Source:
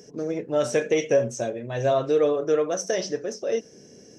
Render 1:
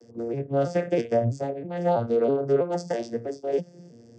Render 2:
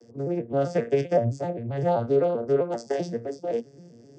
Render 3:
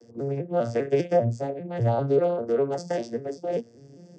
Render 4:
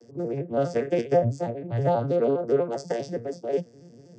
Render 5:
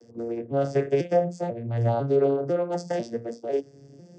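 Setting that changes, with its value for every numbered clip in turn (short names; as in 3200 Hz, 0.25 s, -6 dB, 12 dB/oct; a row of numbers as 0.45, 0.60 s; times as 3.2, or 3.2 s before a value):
arpeggiated vocoder, a note every: 325, 130, 198, 81, 498 ms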